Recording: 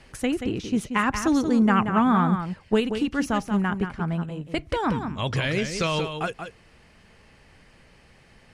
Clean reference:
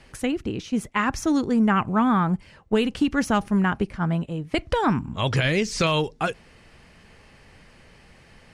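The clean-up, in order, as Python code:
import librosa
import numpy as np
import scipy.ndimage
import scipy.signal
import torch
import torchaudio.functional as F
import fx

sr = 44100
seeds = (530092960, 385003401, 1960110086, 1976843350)

y = fx.fix_echo_inverse(x, sr, delay_ms=181, level_db=-8.0)
y = fx.fix_level(y, sr, at_s=2.8, step_db=3.5)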